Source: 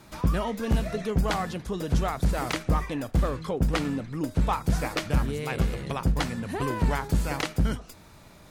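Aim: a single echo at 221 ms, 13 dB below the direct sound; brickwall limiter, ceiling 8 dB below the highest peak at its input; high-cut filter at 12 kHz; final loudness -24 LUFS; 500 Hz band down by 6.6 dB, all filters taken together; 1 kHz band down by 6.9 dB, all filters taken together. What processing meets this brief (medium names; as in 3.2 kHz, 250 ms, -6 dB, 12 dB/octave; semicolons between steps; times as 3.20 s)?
low-pass 12 kHz; peaking EQ 500 Hz -6.5 dB; peaking EQ 1 kHz -7 dB; peak limiter -20.5 dBFS; delay 221 ms -13 dB; trim +8 dB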